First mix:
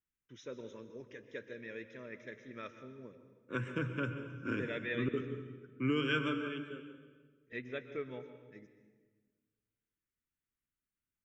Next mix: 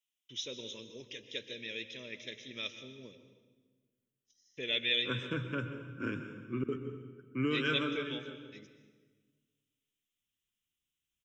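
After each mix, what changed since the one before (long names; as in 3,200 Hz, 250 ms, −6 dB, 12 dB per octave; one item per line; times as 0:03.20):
first voice: add high shelf with overshoot 2,200 Hz +13.5 dB, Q 3
second voice: entry +1.55 s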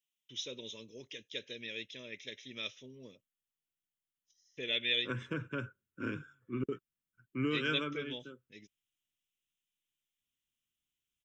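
reverb: off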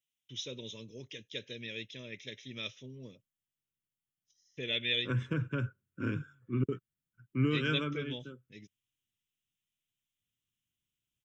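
master: add parametric band 120 Hz +10 dB 1.6 octaves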